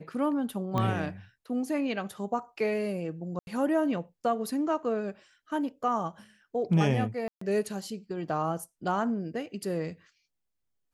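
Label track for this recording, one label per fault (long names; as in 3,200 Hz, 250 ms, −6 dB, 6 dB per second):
0.780000	0.780000	click −17 dBFS
3.390000	3.470000	drop-out 81 ms
7.280000	7.410000	drop-out 134 ms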